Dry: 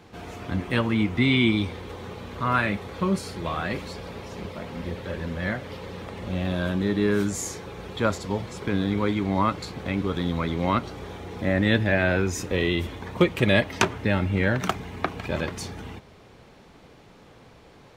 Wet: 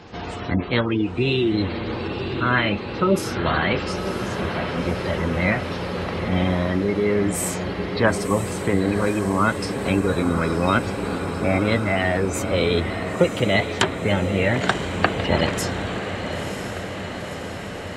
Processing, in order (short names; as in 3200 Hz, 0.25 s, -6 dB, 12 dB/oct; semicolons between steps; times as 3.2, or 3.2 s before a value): vocal rider within 4 dB 0.5 s; spectral gate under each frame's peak -30 dB strong; formant shift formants +3 st; on a send: diffused feedback echo 0.991 s, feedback 71%, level -8.5 dB; on the sum: gain +3.5 dB